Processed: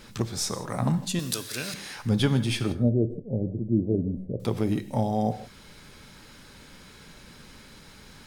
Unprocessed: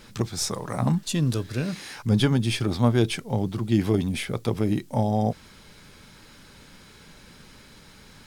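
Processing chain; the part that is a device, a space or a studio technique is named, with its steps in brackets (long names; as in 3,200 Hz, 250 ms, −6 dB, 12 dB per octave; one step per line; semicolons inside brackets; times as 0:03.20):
0:01.19–0:01.74: spectral tilt +4 dB per octave
0:02.72–0:04.40: elliptic low-pass filter 590 Hz, stop band 50 dB
parallel compression (in parallel at −8.5 dB: downward compressor, threshold −37 dBFS, peak gain reduction 20 dB)
on the sum: reverb whose tail is shaped and stops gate 190 ms flat, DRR 11.5 dB
level −2.5 dB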